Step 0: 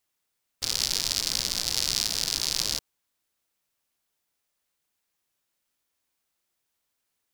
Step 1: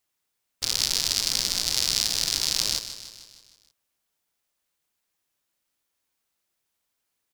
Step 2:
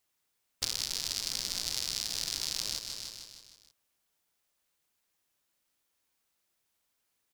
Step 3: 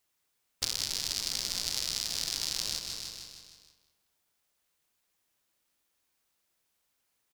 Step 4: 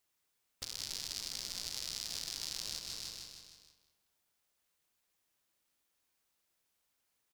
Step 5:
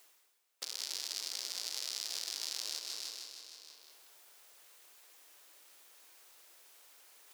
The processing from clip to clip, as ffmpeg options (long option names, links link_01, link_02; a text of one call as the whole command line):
ffmpeg -i in.wav -filter_complex "[0:a]asplit=2[link_01][link_02];[link_02]acrusher=bits=4:mix=0:aa=0.000001,volume=-11dB[link_03];[link_01][link_03]amix=inputs=2:normalize=0,aecho=1:1:154|308|462|616|770|924:0.251|0.143|0.0816|0.0465|0.0265|0.0151" out.wav
ffmpeg -i in.wav -af "acompressor=threshold=-28dB:ratio=6" out.wav
ffmpeg -i in.wav -filter_complex "[0:a]asplit=2[link_01][link_02];[link_02]adelay=196,lowpass=frequency=4100:poles=1,volume=-8.5dB,asplit=2[link_03][link_04];[link_04]adelay=196,lowpass=frequency=4100:poles=1,volume=0.3,asplit=2[link_05][link_06];[link_06]adelay=196,lowpass=frequency=4100:poles=1,volume=0.3,asplit=2[link_07][link_08];[link_08]adelay=196,lowpass=frequency=4100:poles=1,volume=0.3[link_09];[link_01][link_03][link_05][link_07][link_09]amix=inputs=5:normalize=0,volume=1dB" out.wav
ffmpeg -i in.wav -af "alimiter=limit=-18dB:level=0:latency=1:release=384,volume=-3dB" out.wav
ffmpeg -i in.wav -af "highpass=frequency=350:width=0.5412,highpass=frequency=350:width=1.3066,areverse,acompressor=mode=upward:threshold=-45dB:ratio=2.5,areverse,volume=1.5dB" out.wav